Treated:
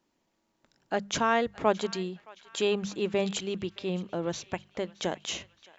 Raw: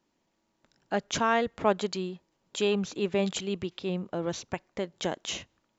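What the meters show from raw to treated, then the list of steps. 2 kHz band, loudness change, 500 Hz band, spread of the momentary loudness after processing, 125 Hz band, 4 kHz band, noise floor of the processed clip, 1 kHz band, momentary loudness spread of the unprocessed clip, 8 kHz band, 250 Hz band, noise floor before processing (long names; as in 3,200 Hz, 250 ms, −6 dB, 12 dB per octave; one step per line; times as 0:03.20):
0.0 dB, 0.0 dB, 0.0 dB, 11 LU, −1.0 dB, 0.0 dB, −76 dBFS, 0.0 dB, 11 LU, can't be measured, −1.0 dB, −76 dBFS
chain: mains-hum notches 50/100/150/200 Hz
on a send: feedback echo with a band-pass in the loop 619 ms, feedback 60%, band-pass 2,500 Hz, level −18 dB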